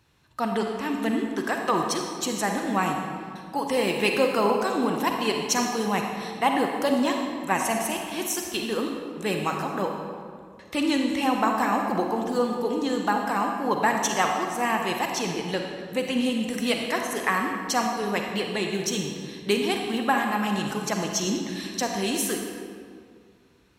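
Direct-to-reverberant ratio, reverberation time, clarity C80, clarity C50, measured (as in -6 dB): 2.0 dB, 2.1 s, 4.5 dB, 3.0 dB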